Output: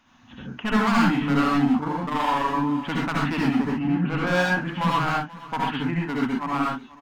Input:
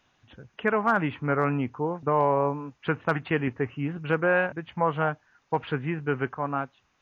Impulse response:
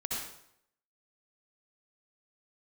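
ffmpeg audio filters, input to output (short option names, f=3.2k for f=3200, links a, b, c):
-filter_complex "[0:a]equalizer=f=125:t=o:w=1:g=-5,equalizer=f=250:t=o:w=1:g=12,equalizer=f=500:t=o:w=1:g=-5,equalizer=f=1k:t=o:w=1:g=6,asoftclip=type=hard:threshold=-20.5dB,alimiter=limit=-24dB:level=0:latency=1,asettb=1/sr,asplit=3[a][b][c];[a]atrim=end=5.714[d];[b]atrim=start=5.71:end=6.59,asetpts=PTS-STARTPTS,afade=t=in:d=0.004:c=qsin,afade=t=out:st=0.876:d=0.004:c=qsin,agate=range=-11dB:threshold=-29dB:ratio=16:detection=peak[e];[c]atrim=start=6.586[f];[d][e]acrossfade=d=0.004:c1=hsin:c2=qsin[g];[g][f]acrossfade=d=0.004:c1=qsin:c2=hsin,equalizer=f=410:w=1.9:g=-6.5,aecho=1:1:485:0.119,asplit=3[h][i][j];[h]afade=t=out:st=1.78:d=0.02[k];[i]tremolo=f=24:d=0.621,afade=t=in:st=1.78:d=0.02,afade=t=out:st=2.47:d=0.02[l];[j]afade=t=in:st=2.47:d=0.02[m];[k][l][m]amix=inputs=3:normalize=0,asettb=1/sr,asplit=3[n][o][p];[n]atrim=end=3.674[q];[o]atrim=start=3.67:end=4.27,asetpts=PTS-STARTPTS,afade=t=in:d=0.004:c=qsin,afade=t=out:st=0.596:d=0.004:c=qsin,lowpass=f=2.3k:p=1[r];[p]atrim=start=4.266[s];[q][r]acrossfade=d=0.004:c1=hsin:c2=qsin[t];[t][s]acrossfade=d=0.004:c1=qsin:c2=hsin[u];[1:a]atrim=start_sample=2205,afade=t=out:st=0.19:d=0.01,atrim=end_sample=8820[v];[u][v]afir=irnorm=-1:irlink=0,volume=5dB"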